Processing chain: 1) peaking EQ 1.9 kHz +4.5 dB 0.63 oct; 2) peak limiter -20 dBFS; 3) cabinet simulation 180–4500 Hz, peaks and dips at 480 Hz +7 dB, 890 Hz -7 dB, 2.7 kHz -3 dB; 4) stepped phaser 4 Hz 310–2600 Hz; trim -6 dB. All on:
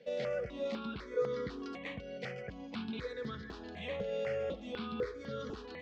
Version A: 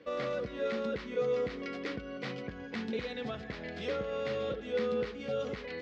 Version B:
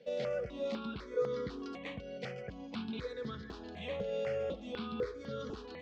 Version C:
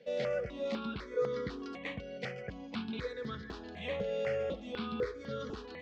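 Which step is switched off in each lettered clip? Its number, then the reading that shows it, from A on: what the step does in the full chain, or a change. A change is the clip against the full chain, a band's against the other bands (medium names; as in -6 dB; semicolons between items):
4, 125 Hz band -1.5 dB; 1, 2 kHz band -2.5 dB; 2, loudness change +1.5 LU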